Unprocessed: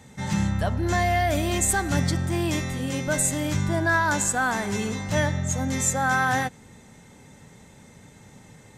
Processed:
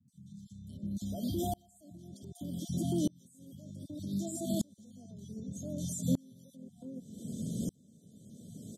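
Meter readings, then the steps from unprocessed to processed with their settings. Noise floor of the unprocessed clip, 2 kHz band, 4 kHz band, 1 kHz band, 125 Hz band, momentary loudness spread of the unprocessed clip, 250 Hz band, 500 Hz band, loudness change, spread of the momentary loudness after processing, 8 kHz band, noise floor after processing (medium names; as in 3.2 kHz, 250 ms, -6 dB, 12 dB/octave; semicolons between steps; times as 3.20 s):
-50 dBFS, under -40 dB, -16.0 dB, -23.0 dB, -13.0 dB, 6 LU, -8.0 dB, -15.0 dB, -13.0 dB, 19 LU, -18.5 dB, -64 dBFS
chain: random holes in the spectrogram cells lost 21%; high-pass 58 Hz; FFT band-reject 720–3000 Hz; three bands offset in time lows, highs, mids 80/510 ms, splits 200/1700 Hz; compression 2.5:1, threshold -47 dBFS, peak gain reduction 18 dB; treble shelf 5.3 kHz +6 dB; peak limiter -37 dBFS, peak gain reduction 13.5 dB; peaking EQ 12 kHz +5 dB 0.79 oct; small resonant body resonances 210/900/1400 Hz, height 17 dB, ringing for 25 ms; sawtooth tremolo in dB swelling 0.65 Hz, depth 32 dB; trim +7.5 dB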